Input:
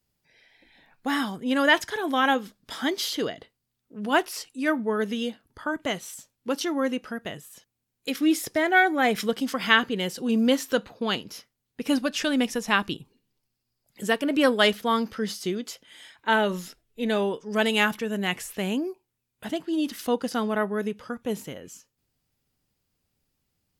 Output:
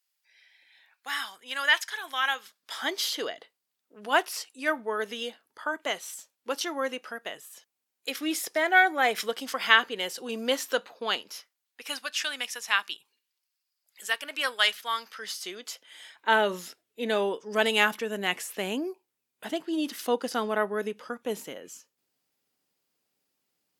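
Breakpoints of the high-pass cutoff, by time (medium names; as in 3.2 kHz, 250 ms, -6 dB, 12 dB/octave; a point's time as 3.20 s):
2.38 s 1.4 kHz
2.93 s 530 Hz
11.14 s 530 Hz
12.00 s 1.3 kHz
15.00 s 1.3 kHz
16.35 s 320 Hz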